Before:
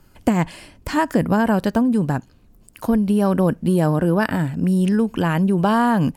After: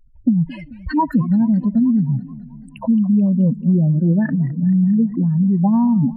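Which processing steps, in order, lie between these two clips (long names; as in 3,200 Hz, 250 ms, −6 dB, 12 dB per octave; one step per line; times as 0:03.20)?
expanding power law on the bin magnitudes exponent 4
feedback echo with a swinging delay time 216 ms, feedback 63%, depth 195 cents, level −18.5 dB
level +3 dB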